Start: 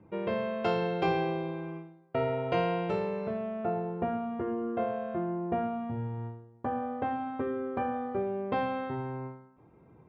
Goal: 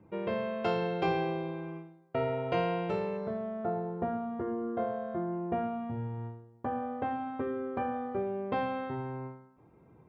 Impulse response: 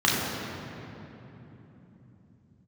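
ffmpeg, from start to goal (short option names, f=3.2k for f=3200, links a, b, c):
-filter_complex "[0:a]asettb=1/sr,asplit=3[a][b][c];[a]atrim=end=3.174[d];[b]atrim=start=3.17:end=5.33,asetpts=PTS-STARTPTS,afade=t=in:d=0.004:c=qsin,afade=t=out:st=2.156:d=0.004:c=qsin,equalizer=f=2.6k:w=4.5:g=-14.5[e];[c]atrim=start=5.326[f];[d][e]acrossfade=d=0.004:c1=hsin:c2=qsin[g];[g][f]acrossfade=d=0.004:c1=qsin:c2=hsin,volume=-1.5dB"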